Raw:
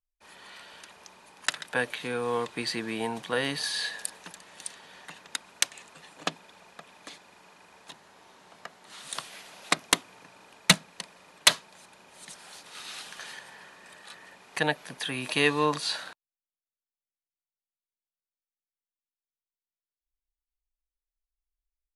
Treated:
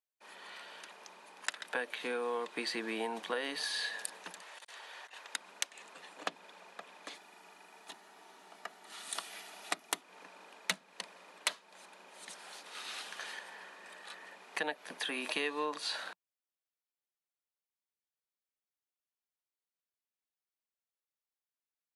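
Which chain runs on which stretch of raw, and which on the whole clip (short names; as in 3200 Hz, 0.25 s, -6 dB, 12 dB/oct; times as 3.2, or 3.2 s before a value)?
4.41–5.34 Bessel high-pass 630 Hz + negative-ratio compressor -50 dBFS, ratio -0.5
7.15–10.01 high shelf 10000 Hz +11 dB + notch comb 530 Hz
whole clip: elliptic high-pass 180 Hz, stop band 40 dB; tone controls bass -9 dB, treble -4 dB; compressor 4:1, threshold -33 dBFS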